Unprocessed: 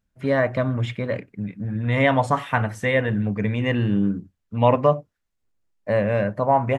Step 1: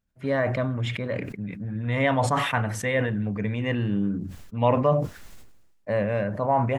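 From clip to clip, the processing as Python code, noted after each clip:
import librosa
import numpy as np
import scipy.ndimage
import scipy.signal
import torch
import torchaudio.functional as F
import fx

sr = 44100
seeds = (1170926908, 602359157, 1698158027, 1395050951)

y = fx.sustainer(x, sr, db_per_s=49.0)
y = F.gain(torch.from_numpy(y), -4.5).numpy()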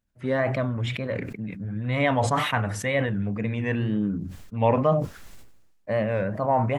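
y = fx.wow_flutter(x, sr, seeds[0], rate_hz=2.1, depth_cents=97.0)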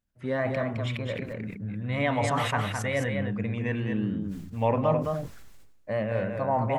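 y = x + 10.0 ** (-5.0 / 20.0) * np.pad(x, (int(213 * sr / 1000.0), 0))[:len(x)]
y = F.gain(torch.from_numpy(y), -4.0).numpy()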